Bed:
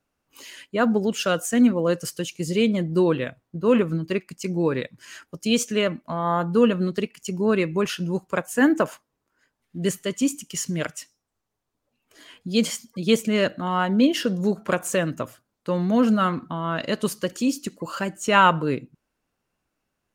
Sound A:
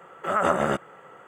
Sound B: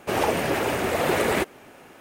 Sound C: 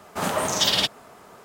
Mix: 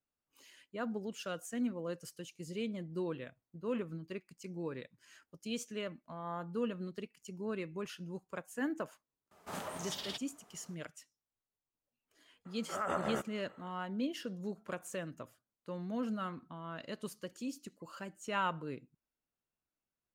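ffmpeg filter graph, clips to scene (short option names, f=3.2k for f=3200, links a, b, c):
-filter_complex "[0:a]volume=-18dB[a];[3:a]alimiter=limit=-14.5dB:level=0:latency=1:release=431,atrim=end=1.44,asetpts=PTS-STARTPTS,volume=-16dB,afade=t=in:d=0.004:c=hsin,afade=t=out:st=1.436:d=0.004:c=hsin,adelay=9310[b];[1:a]atrim=end=1.27,asetpts=PTS-STARTPTS,volume=-13dB,afade=t=in:d=0.004:c=hsin,afade=t=out:st=1.266:d=0.004:c=hsin,adelay=12450[c];[a][b][c]amix=inputs=3:normalize=0"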